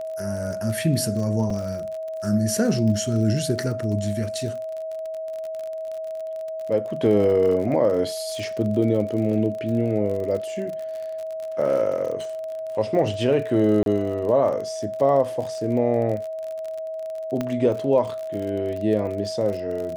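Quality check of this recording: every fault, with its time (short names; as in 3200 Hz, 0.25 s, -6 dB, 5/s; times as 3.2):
crackle 39/s -30 dBFS
tone 640 Hz -28 dBFS
1.5 gap 4.2 ms
13.83–13.86 gap 32 ms
17.41 pop -13 dBFS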